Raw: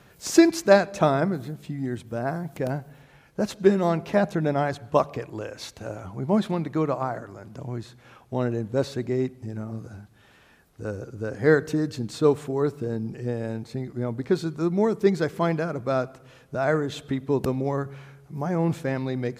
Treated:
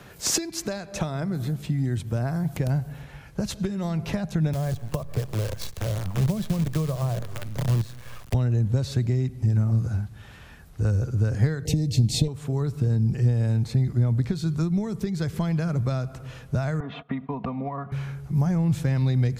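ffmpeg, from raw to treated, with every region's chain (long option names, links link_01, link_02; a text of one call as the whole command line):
ffmpeg -i in.wav -filter_complex "[0:a]asettb=1/sr,asplit=3[link_01][link_02][link_03];[link_01]atrim=end=4.534[link_04];[link_02]atrim=start=4.53:end=8.34,asetpts=PTS-STARTPTS,afade=type=in:duration=0.004:curve=qsin,afade=type=out:start_time=3.806:duration=0.004:curve=qsin,aecho=1:1:1.8:0.53,atrim=end_sample=168021,acrusher=bits=6:dc=4:mix=0:aa=0.000001,acrossover=split=110|710[link_05][link_06][link_07];[link_05]acompressor=threshold=-51dB:ratio=4[link_08];[link_06]acompressor=threshold=-26dB:ratio=4[link_09];[link_07]acompressor=threshold=-41dB:ratio=4[link_10];[link_08][link_09][link_10]amix=inputs=3:normalize=0[link_11];[link_03]atrim=start=8.336[link_12];[link_04][link_11]acrossfade=duration=0.004:curve1=hsin:curve2=qsin[link_13];[link_13][link_12]acrossfade=duration=0.004:curve1=qsin:curve2=hsin,asettb=1/sr,asplit=3[link_14][link_15][link_16];[link_14]atrim=end=11.654[link_17];[link_15]atrim=start=11.65:end=12.28,asetpts=PTS-STARTPTS,afade=type=in:duration=0.004:curve=qsin,afade=type=out:start_time=0.626:duration=0.004:curve=qsin,acontrast=84,asuperstop=centerf=1300:order=8:qfactor=1.1[link_18];[link_16]atrim=start=12.276[link_19];[link_17][link_18]acrossfade=duration=0.004:curve1=hsin:curve2=qsin[link_20];[link_20][link_19]acrossfade=duration=0.004:curve1=qsin:curve2=hsin,asettb=1/sr,asplit=3[link_21][link_22][link_23];[link_21]atrim=end=16.804[link_24];[link_22]atrim=start=16.8:end=17.92,asetpts=PTS-STARTPTS,afade=type=in:duration=0.004:curve=qsin,afade=type=out:start_time=1.116:duration=0.004:curve=qsin,agate=range=-16dB:threshold=-43dB:ratio=16:release=100:detection=peak,highpass=240,equalizer=frequency=320:width_type=q:width=4:gain=-9,equalizer=frequency=460:width_type=q:width=4:gain=-9,equalizer=frequency=700:width_type=q:width=4:gain=6,equalizer=frequency=1100:width_type=q:width=4:gain=7,equalizer=frequency=1600:width_type=q:width=4:gain=-8,lowpass=frequency=2400:width=0.5412,lowpass=frequency=2400:width=1.3066,aecho=1:1:4.2:0.57,atrim=end_sample=49392[link_25];[link_23]atrim=start=17.916[link_26];[link_24][link_25]acrossfade=duration=0.004:curve1=hsin:curve2=qsin[link_27];[link_27][link_26]acrossfade=duration=0.004:curve1=qsin:curve2=hsin,acompressor=threshold=-25dB:ratio=12,asubboost=boost=4:cutoff=150,acrossover=split=180|3000[link_28][link_29][link_30];[link_29]acompressor=threshold=-40dB:ratio=3[link_31];[link_28][link_31][link_30]amix=inputs=3:normalize=0,volume=7dB" out.wav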